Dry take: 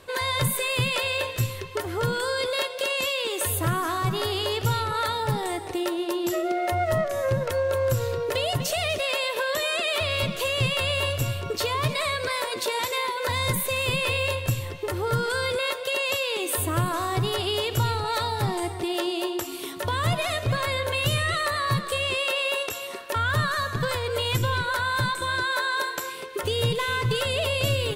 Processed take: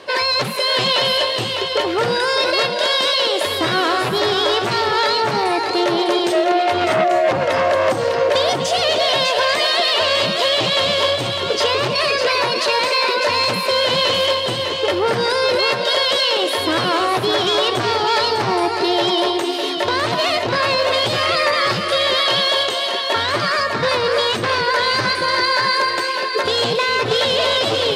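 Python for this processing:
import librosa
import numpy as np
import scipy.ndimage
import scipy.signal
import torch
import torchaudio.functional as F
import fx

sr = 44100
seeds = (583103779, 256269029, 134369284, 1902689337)

y = fx.peak_eq(x, sr, hz=1400.0, db=-4.0, octaves=0.77)
y = fx.formant_shift(y, sr, semitones=2)
y = fx.fold_sine(y, sr, drive_db=9, ceiling_db=-12.0)
y = fx.bandpass_edges(y, sr, low_hz=260.0, high_hz=4800.0)
y = y + 10.0 ** (-6.0 / 20.0) * np.pad(y, (int(603 * sr / 1000.0), 0))[:len(y)]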